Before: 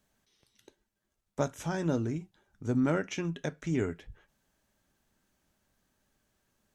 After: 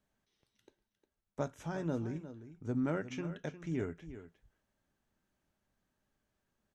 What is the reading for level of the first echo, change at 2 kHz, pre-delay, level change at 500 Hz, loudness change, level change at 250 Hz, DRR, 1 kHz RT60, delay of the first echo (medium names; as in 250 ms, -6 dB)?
-13.0 dB, -7.0 dB, no reverb, -6.0 dB, -6.0 dB, -6.0 dB, no reverb, no reverb, 356 ms